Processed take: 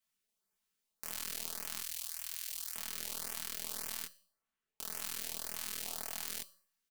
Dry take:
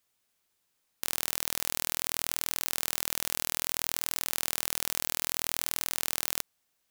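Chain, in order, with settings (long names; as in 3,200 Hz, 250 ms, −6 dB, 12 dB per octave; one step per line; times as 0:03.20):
0:04.05–0:04.80: running median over 9 samples
0:05.85–0:06.27: parametric band 750 Hz +13 dB 0.22 octaves
comb filter 4.6 ms
0:01.80–0:02.76: guitar amp tone stack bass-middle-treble 10-0-10
tuned comb filter 190 Hz, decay 0.51 s, harmonics all, mix 60%
auto-filter notch saw up 1.8 Hz 340–4,600 Hz
micro pitch shift up and down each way 54 cents
level +1 dB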